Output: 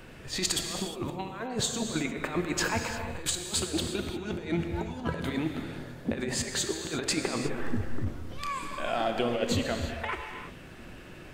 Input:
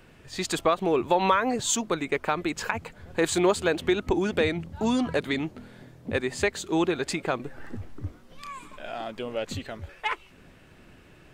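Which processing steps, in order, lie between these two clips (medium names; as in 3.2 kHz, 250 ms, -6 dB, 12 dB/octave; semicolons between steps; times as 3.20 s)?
compressor with a negative ratio -31 dBFS, ratio -0.5; gated-style reverb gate 380 ms flat, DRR 4 dB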